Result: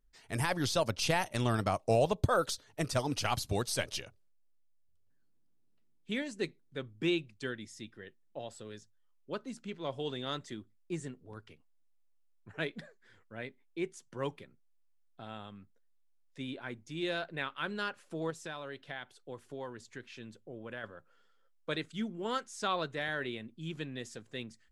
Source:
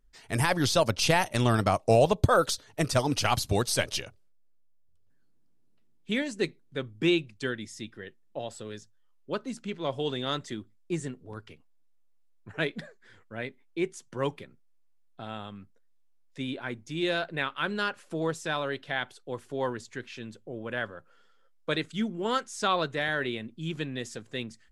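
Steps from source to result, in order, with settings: 18.3–20.84 compressor 2.5:1, threshold -34 dBFS, peak gain reduction 7 dB; gain -6.5 dB

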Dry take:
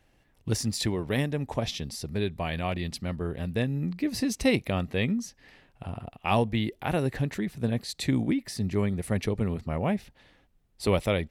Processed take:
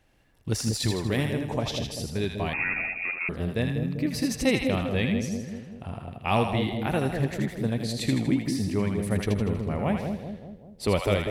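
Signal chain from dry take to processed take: on a send: split-band echo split 690 Hz, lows 0.195 s, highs 80 ms, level -4.5 dB; 2.53–3.29 on the sum: inverted band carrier 2600 Hz

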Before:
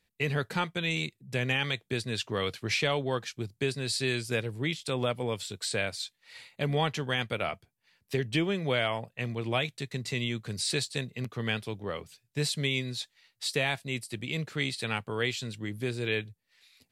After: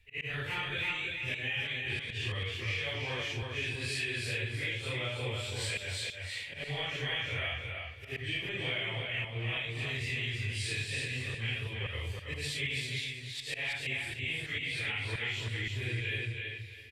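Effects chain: phase scrambler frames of 0.2 s; resonant low shelf 120 Hz +13 dB, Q 3; auto swell 0.191 s; band shelf 2400 Hz +11.5 dB 1.1 oct; compressor, threshold -33 dBFS, peak gain reduction 16 dB; feedback echo 0.327 s, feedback 26%, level -4 dB; gain -1 dB

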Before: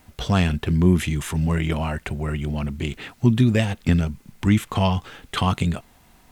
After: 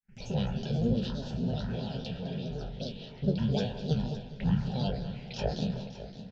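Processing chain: spectral trails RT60 0.58 s; gate with hold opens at -41 dBFS; band shelf 2600 Hz +10.5 dB; grains 0.154 s, grains 24/s, spray 31 ms, pitch spread up and down by 12 st; fixed phaser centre 310 Hz, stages 6; envelope phaser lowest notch 590 Hz, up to 2100 Hz, full sweep at -28 dBFS; tape spacing loss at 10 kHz 31 dB; feedback echo 0.207 s, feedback 48%, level -14 dB; warbling echo 0.565 s, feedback 46%, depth 87 cents, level -14 dB; gain -3 dB

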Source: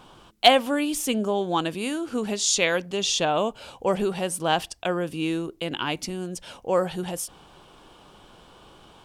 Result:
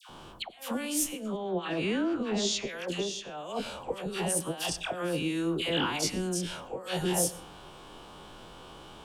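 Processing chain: spectral dilation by 60 ms; 1.36–2.68 Bessel low-pass 2600 Hz, order 2; negative-ratio compressor -26 dBFS, ratio -0.5; dispersion lows, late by 96 ms, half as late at 1200 Hz; reverb RT60 0.45 s, pre-delay 88 ms, DRR 17.5 dB; gain -5.5 dB

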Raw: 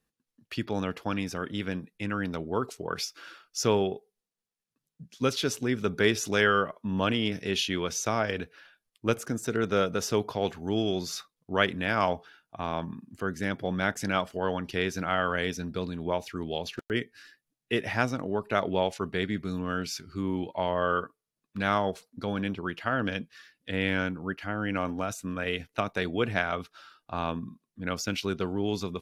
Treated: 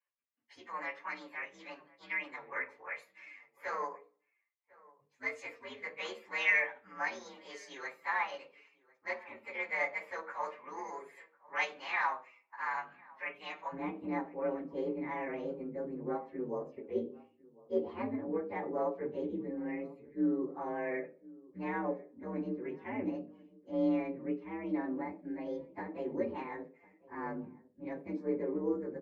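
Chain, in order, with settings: inharmonic rescaling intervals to 126%; soft clip -16.5 dBFS, distortion -25 dB; ladder band-pass 1300 Hz, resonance 25%, from 13.72 s 440 Hz; outdoor echo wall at 180 m, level -22 dB; reverb RT60 0.40 s, pre-delay 3 ms, DRR 7 dB; gain +5 dB

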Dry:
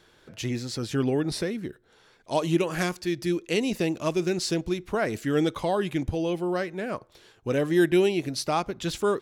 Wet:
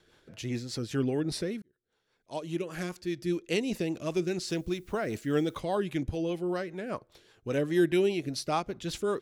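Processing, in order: rotary speaker horn 5 Hz; 1.62–3.44 fade in; 4.47–5.59 added noise blue -65 dBFS; gain -2.5 dB

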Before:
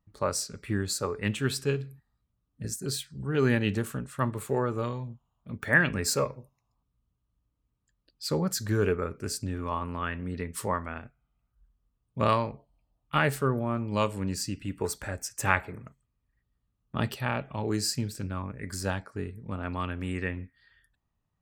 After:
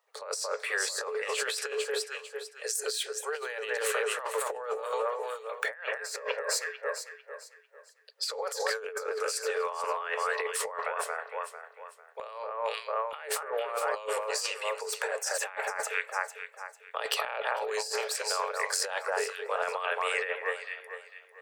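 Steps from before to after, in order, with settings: Chebyshev high-pass 430 Hz, order 8; bell 14000 Hz -10 dB 0.25 oct; on a send: echo with dull and thin repeats by turns 0.224 s, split 1900 Hz, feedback 55%, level -7 dB; on the sum: negative-ratio compressor -40 dBFS, ratio -1; gain +6.5 dB

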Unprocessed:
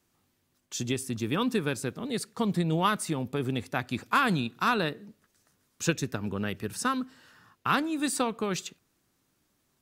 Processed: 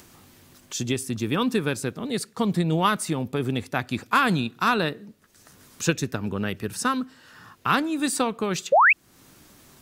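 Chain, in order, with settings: upward compressor, threshold -41 dBFS; painted sound rise, 8.72–8.93, 490–2800 Hz -19 dBFS; gain +4 dB

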